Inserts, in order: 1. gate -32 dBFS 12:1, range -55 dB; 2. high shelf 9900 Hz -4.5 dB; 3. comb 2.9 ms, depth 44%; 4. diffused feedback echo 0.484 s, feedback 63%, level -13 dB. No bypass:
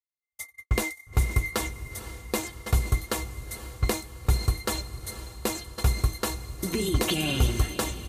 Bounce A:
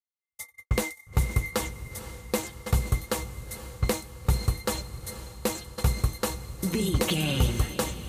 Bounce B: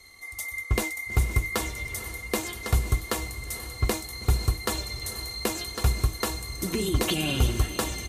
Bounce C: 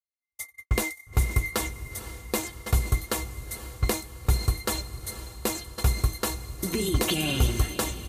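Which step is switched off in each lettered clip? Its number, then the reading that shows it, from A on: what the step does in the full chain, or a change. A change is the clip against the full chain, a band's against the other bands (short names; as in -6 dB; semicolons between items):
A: 3, 2 kHz band -2.0 dB; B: 1, momentary loudness spread change -5 LU; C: 2, 8 kHz band +1.5 dB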